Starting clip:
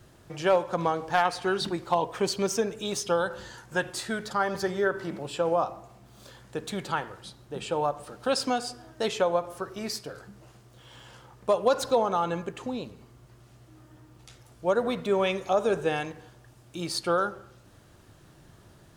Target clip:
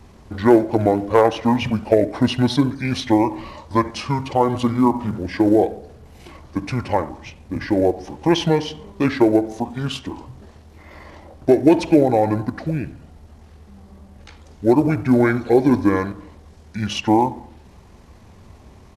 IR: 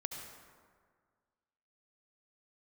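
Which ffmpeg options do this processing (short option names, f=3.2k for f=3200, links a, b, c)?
-filter_complex "[0:a]acrusher=bits=8:mode=log:mix=0:aa=0.000001,asplit=2[a][b];[1:a]atrim=start_sample=2205,atrim=end_sample=3528,lowpass=3.5k[c];[b][c]afir=irnorm=-1:irlink=0,volume=-2dB[d];[a][d]amix=inputs=2:normalize=0,asetrate=27781,aresample=44100,atempo=1.5874,volume=6dB"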